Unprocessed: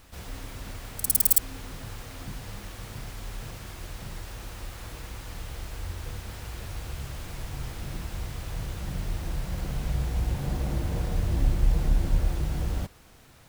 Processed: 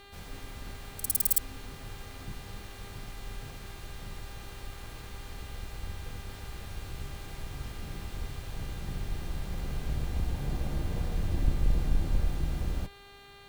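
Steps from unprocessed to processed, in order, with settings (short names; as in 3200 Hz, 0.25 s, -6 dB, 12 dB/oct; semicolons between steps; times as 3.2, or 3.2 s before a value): octaver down 2 oct, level 0 dB; buzz 400 Hz, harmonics 11, -48 dBFS -2 dB/oct; gain -5.5 dB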